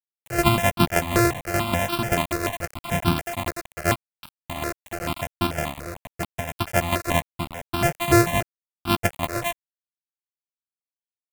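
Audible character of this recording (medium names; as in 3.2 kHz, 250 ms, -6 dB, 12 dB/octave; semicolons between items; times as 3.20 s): a buzz of ramps at a fixed pitch in blocks of 128 samples; tremolo saw down 5.2 Hz, depth 60%; a quantiser's noise floor 6-bit, dither none; notches that jump at a steady rate 6.9 Hz 870–1900 Hz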